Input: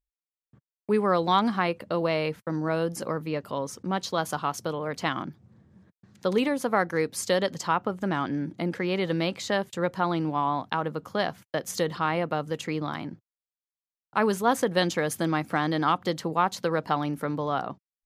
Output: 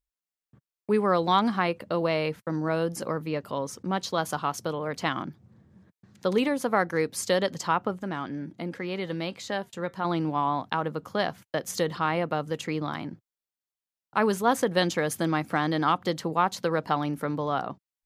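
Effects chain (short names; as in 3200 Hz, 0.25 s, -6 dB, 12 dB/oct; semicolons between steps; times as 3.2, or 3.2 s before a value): 7.98–10.05 flange 1.3 Hz, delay 3.6 ms, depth 1.6 ms, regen +84%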